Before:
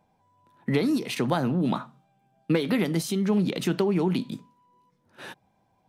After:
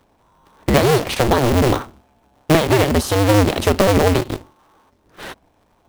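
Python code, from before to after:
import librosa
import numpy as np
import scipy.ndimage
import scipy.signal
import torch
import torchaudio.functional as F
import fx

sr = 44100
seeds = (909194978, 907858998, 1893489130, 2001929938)

p1 = fx.cycle_switch(x, sr, every=2, mode='inverted')
p2 = fx.sample_hold(p1, sr, seeds[0], rate_hz=2400.0, jitter_pct=0)
p3 = p1 + F.gain(torch.from_numpy(p2), -9.0).numpy()
y = F.gain(torch.from_numpy(p3), 7.5).numpy()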